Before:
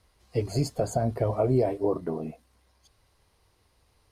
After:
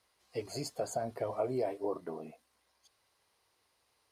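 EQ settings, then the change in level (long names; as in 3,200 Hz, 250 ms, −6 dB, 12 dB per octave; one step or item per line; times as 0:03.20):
high-pass filter 640 Hz 6 dB per octave
−4.0 dB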